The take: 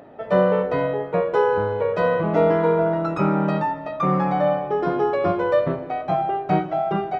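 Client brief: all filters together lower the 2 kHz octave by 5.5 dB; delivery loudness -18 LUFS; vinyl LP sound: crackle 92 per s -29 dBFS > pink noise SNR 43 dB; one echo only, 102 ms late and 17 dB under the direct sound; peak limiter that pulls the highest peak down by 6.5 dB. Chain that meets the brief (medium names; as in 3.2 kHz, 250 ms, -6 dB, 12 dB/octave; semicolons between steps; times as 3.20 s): peaking EQ 2 kHz -8 dB; peak limiter -13 dBFS; delay 102 ms -17 dB; crackle 92 per s -29 dBFS; pink noise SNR 43 dB; trim +5 dB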